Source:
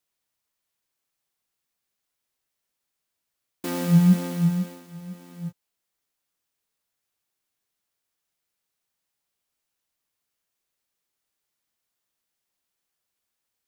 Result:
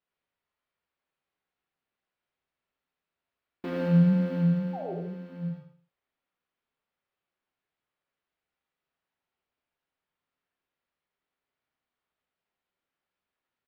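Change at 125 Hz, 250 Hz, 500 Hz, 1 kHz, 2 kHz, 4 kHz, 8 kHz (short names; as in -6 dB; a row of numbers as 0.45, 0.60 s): -3.5 dB, -3.5 dB, +3.5 dB, -2.0 dB, -3.0 dB, under -10 dB, under -25 dB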